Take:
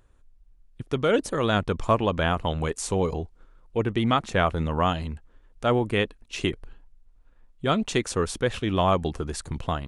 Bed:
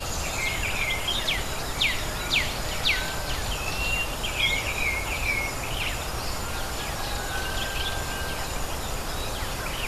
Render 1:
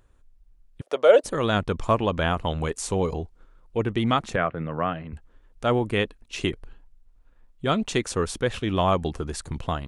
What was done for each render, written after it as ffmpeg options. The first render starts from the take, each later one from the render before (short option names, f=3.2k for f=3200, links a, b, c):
-filter_complex "[0:a]asettb=1/sr,asplit=3[a][b][c];[a]atrim=end=0.814[d];[b]atrim=start=0.81:end=1.24,asetpts=PTS-STARTPTS,afade=t=in:d=0.004:c=qsin,afade=t=out:st=0.426:d=0.004:c=qsin,highpass=f=580:t=q:w=4.7[e];[c]atrim=start=1.236[f];[d][e]acrossfade=d=0.004:c1=hsin:c2=qsin[g];[g][f]acrossfade=d=0.004:c1=qsin:c2=hsin,asettb=1/sr,asplit=3[h][i][j];[h]atrim=end=4.364[k];[i]atrim=start=4.36:end=5.13,asetpts=PTS-STARTPTS,afade=t=in:d=0.004:c=qsin,afade=t=out:st=0.766:d=0.004:c=qsin,highpass=f=120:w=0.5412,highpass=f=120:w=1.3066,equalizer=f=210:t=q:w=4:g=-8,equalizer=f=380:t=q:w=4:g=-5,equalizer=f=900:t=q:w=4:g=-9,lowpass=f=2.3k:w=0.5412,lowpass=f=2.3k:w=1.3066[l];[j]atrim=start=5.126[m];[k][l]acrossfade=d=0.004:c1=hsin:c2=qsin[n];[n][m]acrossfade=d=0.004:c1=qsin:c2=hsin"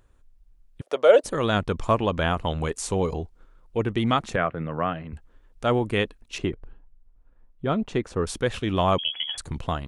-filter_complex "[0:a]asettb=1/sr,asplit=3[a][b][c];[a]atrim=end=6.384[d];[b]atrim=start=6.38:end=8.27,asetpts=PTS-STARTPTS,afade=t=in:d=0.004:c=qsin,afade=t=out:st=1.886:d=0.004:c=qsin,lowpass=f=1.1k:p=1[e];[c]atrim=start=8.266[f];[d][e]acrossfade=d=0.004:c1=hsin:c2=qsin[g];[g][f]acrossfade=d=0.004:c1=qsin:c2=hsin,asettb=1/sr,asplit=3[h][i][j];[h]atrim=end=8.984[k];[i]atrim=start=8.98:end=9.38,asetpts=PTS-STARTPTS,afade=t=in:d=0.004:c=qsin,afade=t=out:st=0.396:d=0.004:c=qsin,lowpass=f=2.9k:t=q:w=0.5098,lowpass=f=2.9k:t=q:w=0.6013,lowpass=f=2.9k:t=q:w=0.9,lowpass=f=2.9k:t=q:w=2.563,afreqshift=-3400[l];[j]atrim=start=9.376[m];[k][l]acrossfade=d=0.004:c1=hsin:c2=qsin[n];[n][m]acrossfade=d=0.004:c1=qsin:c2=hsin"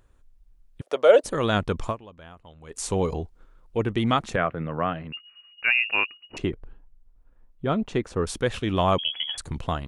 -filter_complex "[0:a]asettb=1/sr,asplit=3[a][b][c];[a]atrim=end=5.124[d];[b]atrim=start=5.12:end=6.37,asetpts=PTS-STARTPTS,afade=t=in:d=0.004:c=qsin,afade=t=out:st=1.246:d=0.004:c=qsin,lowpass=f=2.5k:t=q:w=0.5098,lowpass=f=2.5k:t=q:w=0.6013,lowpass=f=2.5k:t=q:w=0.9,lowpass=f=2.5k:t=q:w=2.563,afreqshift=-2900[e];[c]atrim=start=6.366[f];[d][e]acrossfade=d=0.004:c1=hsin:c2=qsin[g];[g][f]acrossfade=d=0.004:c1=qsin:c2=hsin,asplit=3[h][i][j];[h]atrim=end=2.25,asetpts=PTS-STARTPTS,afade=t=out:st=1.88:d=0.37:c=exp:silence=0.0794328[k];[i]atrim=start=2.25:end=2.39,asetpts=PTS-STARTPTS,volume=-22dB[l];[j]atrim=start=2.39,asetpts=PTS-STARTPTS,afade=t=in:d=0.37:c=exp:silence=0.0794328[m];[k][l][m]concat=n=3:v=0:a=1"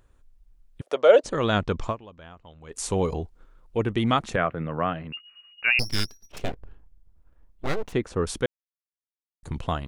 -filter_complex "[0:a]asettb=1/sr,asplit=3[a][b][c];[a]atrim=end=0.944[d];[b]atrim=start=0.94:end=2.73,asetpts=PTS-STARTPTS,afade=t=in:d=0.004:c=qsin,afade=t=out:st=1.786:d=0.004:c=qsin,lowpass=f=7.4k:w=0.5412,lowpass=f=7.4k:w=1.3066[e];[c]atrim=start=2.726[f];[d][e]acrossfade=d=0.004:c1=hsin:c2=qsin[g];[g][f]acrossfade=d=0.004:c1=qsin:c2=hsin,asettb=1/sr,asplit=3[h][i][j];[h]atrim=end=5.794[k];[i]atrim=start=5.79:end=7.93,asetpts=PTS-STARTPTS,afade=t=in:d=0.004:c=qsin,afade=t=out:st=2.136:d=0.004:c=qsin,aeval=exprs='abs(val(0))':c=same[l];[j]atrim=start=7.926[m];[k][l]acrossfade=d=0.004:c1=hsin:c2=qsin[n];[n][m]acrossfade=d=0.004:c1=qsin:c2=hsin,asplit=3[o][p][q];[o]atrim=end=8.46,asetpts=PTS-STARTPTS,afade=t=out:st=8.456:d=0.004:c=hsin[r];[p]atrim=start=8.46:end=9.43,asetpts=PTS-STARTPTS,volume=0[s];[q]atrim=start=9.43,asetpts=PTS-STARTPTS,afade=t=in:d=0.004:c=hsin[t];[r][s][t]concat=n=3:v=0:a=1"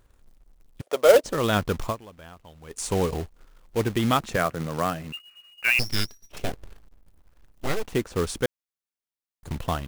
-af "acrusher=bits=3:mode=log:mix=0:aa=0.000001"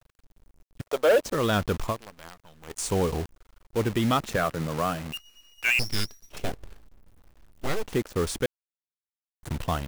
-af "acrusher=bits=7:dc=4:mix=0:aa=0.000001,asoftclip=type=tanh:threshold=-14.5dB"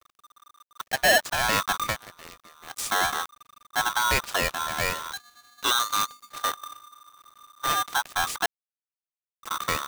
-af "aeval=exprs='val(0)*sgn(sin(2*PI*1200*n/s))':c=same"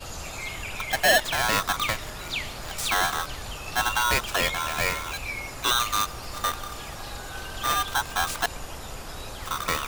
-filter_complex "[1:a]volume=-7dB[a];[0:a][a]amix=inputs=2:normalize=0"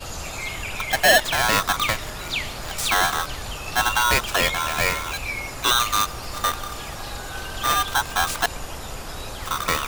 -af "volume=4dB"